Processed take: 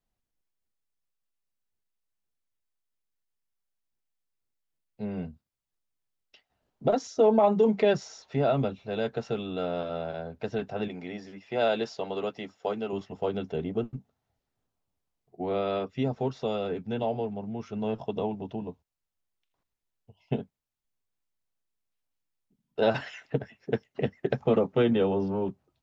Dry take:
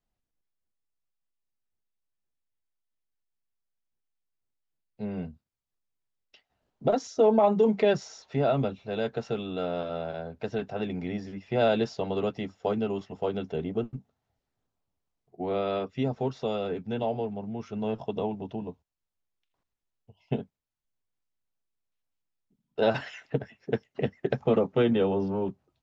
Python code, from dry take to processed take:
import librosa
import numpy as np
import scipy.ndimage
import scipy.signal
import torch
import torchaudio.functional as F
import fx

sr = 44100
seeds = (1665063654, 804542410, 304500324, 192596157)

y = fx.highpass(x, sr, hz=410.0, slope=6, at=(10.88, 12.93))